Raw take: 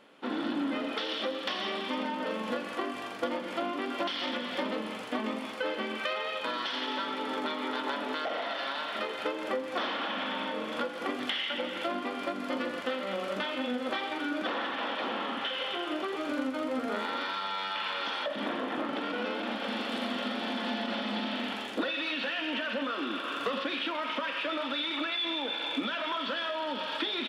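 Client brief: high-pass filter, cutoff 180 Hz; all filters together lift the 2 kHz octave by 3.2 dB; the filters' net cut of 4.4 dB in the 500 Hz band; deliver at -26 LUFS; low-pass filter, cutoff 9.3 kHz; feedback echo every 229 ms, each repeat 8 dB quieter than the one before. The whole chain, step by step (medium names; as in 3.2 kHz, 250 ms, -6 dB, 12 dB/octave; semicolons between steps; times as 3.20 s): high-pass 180 Hz; low-pass 9.3 kHz; peaking EQ 500 Hz -5.5 dB; peaking EQ 2 kHz +4.5 dB; feedback delay 229 ms, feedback 40%, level -8 dB; trim +5.5 dB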